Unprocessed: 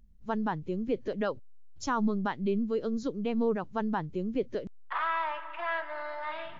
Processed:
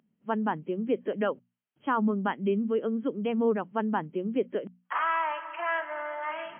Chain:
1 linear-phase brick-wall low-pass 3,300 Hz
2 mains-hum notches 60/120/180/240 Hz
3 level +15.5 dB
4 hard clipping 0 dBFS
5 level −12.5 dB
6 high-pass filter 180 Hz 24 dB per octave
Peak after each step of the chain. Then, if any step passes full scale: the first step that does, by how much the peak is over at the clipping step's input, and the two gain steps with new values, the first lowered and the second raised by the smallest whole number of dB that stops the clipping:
−17.5, −17.5, −2.0, −2.0, −14.5, −14.5 dBFS
no step passes full scale

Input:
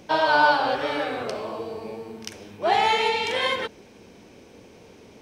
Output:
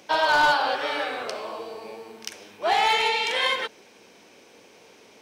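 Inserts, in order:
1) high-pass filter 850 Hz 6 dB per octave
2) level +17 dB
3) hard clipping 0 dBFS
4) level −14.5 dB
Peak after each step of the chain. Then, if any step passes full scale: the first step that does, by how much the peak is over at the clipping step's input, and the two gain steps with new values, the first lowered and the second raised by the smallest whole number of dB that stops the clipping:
−8.5, +8.5, 0.0, −14.5 dBFS
step 2, 8.5 dB
step 2 +8 dB, step 4 −5.5 dB

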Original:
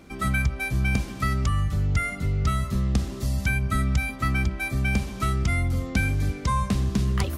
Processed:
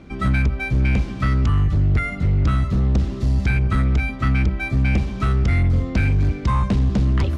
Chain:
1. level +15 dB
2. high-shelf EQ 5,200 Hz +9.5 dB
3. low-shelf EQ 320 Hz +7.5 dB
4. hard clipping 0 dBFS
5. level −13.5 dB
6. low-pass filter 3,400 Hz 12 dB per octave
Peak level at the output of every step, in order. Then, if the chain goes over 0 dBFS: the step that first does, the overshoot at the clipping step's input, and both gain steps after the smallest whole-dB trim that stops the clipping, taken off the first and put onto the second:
+4.0, +8.5, +10.0, 0.0, −13.5, −13.0 dBFS
step 1, 10.0 dB
step 1 +5 dB, step 5 −3.5 dB

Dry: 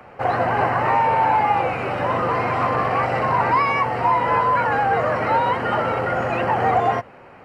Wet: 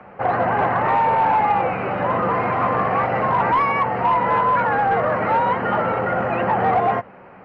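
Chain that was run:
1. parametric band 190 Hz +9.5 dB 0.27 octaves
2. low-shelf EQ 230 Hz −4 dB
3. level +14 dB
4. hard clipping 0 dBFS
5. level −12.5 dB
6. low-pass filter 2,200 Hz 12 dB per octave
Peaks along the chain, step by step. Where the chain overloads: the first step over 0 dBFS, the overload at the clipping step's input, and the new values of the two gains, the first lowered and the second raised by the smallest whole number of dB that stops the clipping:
−7.0, −7.5, +6.5, 0.0, −12.5, −12.0 dBFS
step 3, 6.5 dB
step 3 +7 dB, step 5 −5.5 dB

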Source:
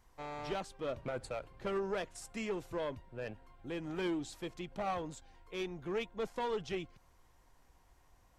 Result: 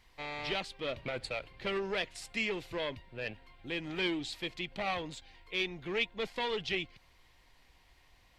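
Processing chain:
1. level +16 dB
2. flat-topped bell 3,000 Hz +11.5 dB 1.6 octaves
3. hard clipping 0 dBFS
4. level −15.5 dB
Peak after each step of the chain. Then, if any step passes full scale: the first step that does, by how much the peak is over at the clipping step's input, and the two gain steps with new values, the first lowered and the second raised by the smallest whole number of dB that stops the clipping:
−9.5, −3.5, −3.5, −19.0 dBFS
no step passes full scale

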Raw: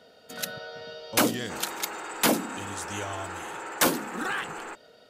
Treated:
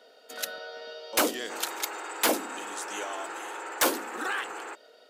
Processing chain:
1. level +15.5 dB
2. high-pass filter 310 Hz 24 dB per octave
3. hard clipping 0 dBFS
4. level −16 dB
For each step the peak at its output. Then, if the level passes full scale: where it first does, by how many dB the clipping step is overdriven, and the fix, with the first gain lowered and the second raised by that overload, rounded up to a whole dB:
+6.0, +8.0, 0.0, −16.0 dBFS
step 1, 8.0 dB
step 1 +7.5 dB, step 4 −8 dB

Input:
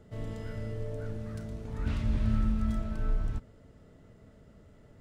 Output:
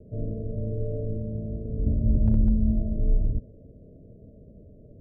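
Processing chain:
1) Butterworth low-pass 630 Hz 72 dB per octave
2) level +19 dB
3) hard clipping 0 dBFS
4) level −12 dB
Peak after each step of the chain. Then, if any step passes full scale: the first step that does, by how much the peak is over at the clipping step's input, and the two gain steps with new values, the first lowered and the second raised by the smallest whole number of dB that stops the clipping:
−15.5, +3.5, 0.0, −12.0 dBFS
step 2, 3.5 dB
step 2 +15 dB, step 4 −8 dB

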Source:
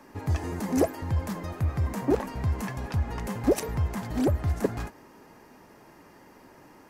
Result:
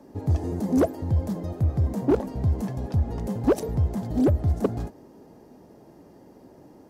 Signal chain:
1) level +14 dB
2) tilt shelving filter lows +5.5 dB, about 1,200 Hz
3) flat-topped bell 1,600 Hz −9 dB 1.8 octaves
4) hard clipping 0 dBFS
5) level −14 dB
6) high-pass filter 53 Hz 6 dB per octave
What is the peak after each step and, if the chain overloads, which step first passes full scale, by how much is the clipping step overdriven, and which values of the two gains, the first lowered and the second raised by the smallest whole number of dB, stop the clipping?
+3.0, +7.5, +7.5, 0.0, −14.0, −12.0 dBFS
step 1, 7.5 dB
step 1 +6 dB, step 5 −6 dB

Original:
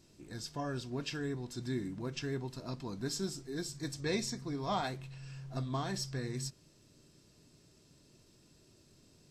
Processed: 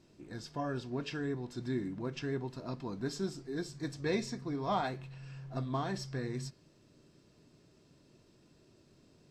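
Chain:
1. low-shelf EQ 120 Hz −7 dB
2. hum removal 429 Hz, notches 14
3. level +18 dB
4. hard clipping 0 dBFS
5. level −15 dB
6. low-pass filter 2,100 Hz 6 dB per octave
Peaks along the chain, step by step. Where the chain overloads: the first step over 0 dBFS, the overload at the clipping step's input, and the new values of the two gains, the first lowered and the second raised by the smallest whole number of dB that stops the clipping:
−22.0, −22.0, −4.0, −4.0, −19.0, −20.5 dBFS
no step passes full scale

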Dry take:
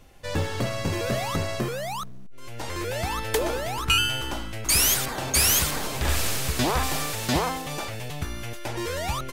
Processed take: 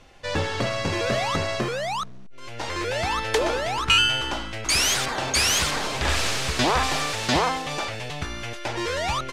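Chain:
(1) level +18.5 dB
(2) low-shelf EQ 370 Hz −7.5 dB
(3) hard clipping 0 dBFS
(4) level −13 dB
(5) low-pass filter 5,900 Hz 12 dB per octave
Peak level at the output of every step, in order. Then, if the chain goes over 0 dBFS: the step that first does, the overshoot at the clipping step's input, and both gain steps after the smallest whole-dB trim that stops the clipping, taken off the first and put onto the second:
+7.5, +7.5, 0.0, −13.0, −12.0 dBFS
step 1, 7.5 dB
step 1 +10.5 dB, step 4 −5 dB

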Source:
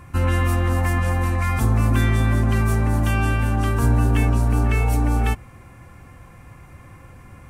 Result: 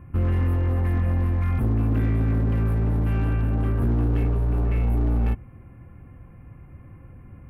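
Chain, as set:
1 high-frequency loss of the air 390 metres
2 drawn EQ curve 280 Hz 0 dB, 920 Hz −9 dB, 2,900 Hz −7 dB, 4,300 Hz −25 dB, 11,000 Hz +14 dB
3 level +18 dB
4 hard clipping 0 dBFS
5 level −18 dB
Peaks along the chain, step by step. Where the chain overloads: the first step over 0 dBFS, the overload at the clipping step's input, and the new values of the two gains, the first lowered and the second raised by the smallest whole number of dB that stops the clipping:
−8.0, −8.5, +9.5, 0.0, −18.0 dBFS
step 3, 9.5 dB
step 3 +8 dB, step 5 −8 dB

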